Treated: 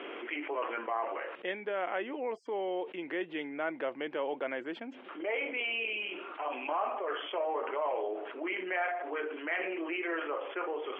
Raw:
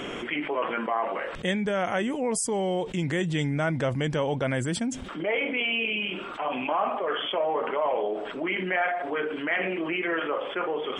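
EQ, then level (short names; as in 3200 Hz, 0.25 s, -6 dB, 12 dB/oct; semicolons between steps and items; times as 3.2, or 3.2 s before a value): elliptic band-pass 320–2800 Hz, stop band 60 dB; -6.0 dB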